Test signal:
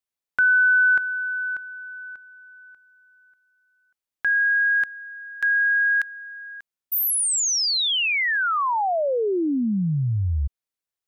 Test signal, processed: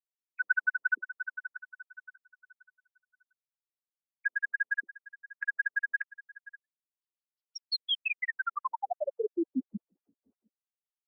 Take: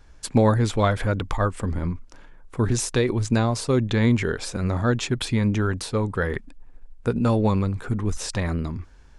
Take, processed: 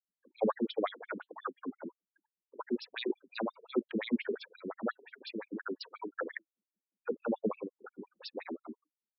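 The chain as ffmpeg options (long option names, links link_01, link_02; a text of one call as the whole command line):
ffmpeg -i in.wav -af "afftfilt=real='re*gte(hypot(re,im),0.0141)':imag='im*gte(hypot(re,im),0.0141)':win_size=1024:overlap=0.75,flanger=delay=2.3:depth=2.7:regen=-69:speed=1.3:shape=sinusoidal,afftfilt=real='re*between(b*sr/1024,280*pow(4000/280,0.5+0.5*sin(2*PI*5.7*pts/sr))/1.41,280*pow(4000/280,0.5+0.5*sin(2*PI*5.7*pts/sr))*1.41)':imag='im*between(b*sr/1024,280*pow(4000/280,0.5+0.5*sin(2*PI*5.7*pts/sr))/1.41,280*pow(4000/280,0.5+0.5*sin(2*PI*5.7*pts/sr))*1.41)':win_size=1024:overlap=0.75" out.wav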